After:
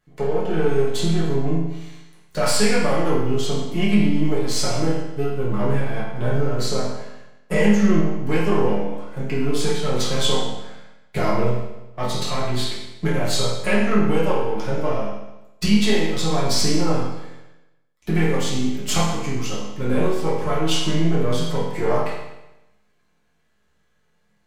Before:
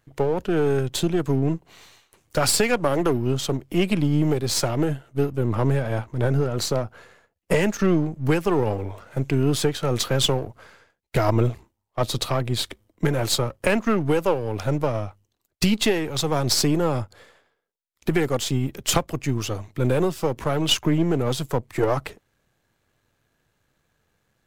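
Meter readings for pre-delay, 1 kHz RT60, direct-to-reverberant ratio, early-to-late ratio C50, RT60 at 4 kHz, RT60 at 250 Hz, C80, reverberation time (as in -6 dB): 5 ms, 0.95 s, -9.0 dB, 1.0 dB, 0.90 s, 0.90 s, 4.0 dB, 0.95 s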